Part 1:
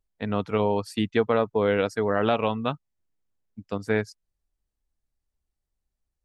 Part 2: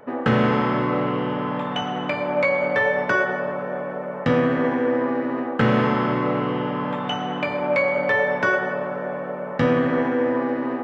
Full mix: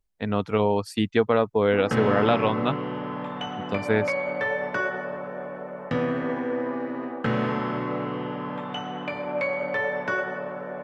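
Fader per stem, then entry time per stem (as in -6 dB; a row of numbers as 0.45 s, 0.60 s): +1.5 dB, -6.5 dB; 0.00 s, 1.65 s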